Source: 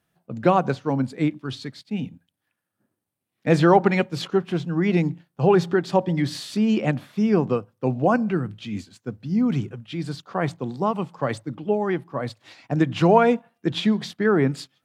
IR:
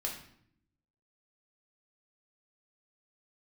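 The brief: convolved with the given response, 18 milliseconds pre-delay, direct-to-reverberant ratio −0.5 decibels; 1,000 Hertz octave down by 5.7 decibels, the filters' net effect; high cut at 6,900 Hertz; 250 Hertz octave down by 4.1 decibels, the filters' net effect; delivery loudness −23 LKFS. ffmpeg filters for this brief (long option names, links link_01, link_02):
-filter_complex "[0:a]lowpass=6900,equalizer=frequency=250:width_type=o:gain=-5.5,equalizer=frequency=1000:width_type=o:gain=-7.5,asplit=2[link_01][link_02];[1:a]atrim=start_sample=2205,adelay=18[link_03];[link_02][link_03]afir=irnorm=-1:irlink=0,volume=-1.5dB[link_04];[link_01][link_04]amix=inputs=2:normalize=0"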